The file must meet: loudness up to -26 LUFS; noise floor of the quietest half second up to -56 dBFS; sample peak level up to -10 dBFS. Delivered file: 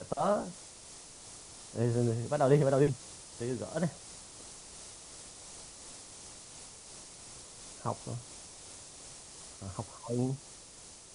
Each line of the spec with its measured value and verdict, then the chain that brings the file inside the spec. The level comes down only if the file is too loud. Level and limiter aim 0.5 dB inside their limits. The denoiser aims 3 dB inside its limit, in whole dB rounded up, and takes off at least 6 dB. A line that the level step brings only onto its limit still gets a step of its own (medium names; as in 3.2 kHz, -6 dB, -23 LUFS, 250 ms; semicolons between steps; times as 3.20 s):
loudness -33.0 LUFS: pass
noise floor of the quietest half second -52 dBFS: fail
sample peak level -12.0 dBFS: pass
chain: noise reduction 7 dB, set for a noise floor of -52 dBFS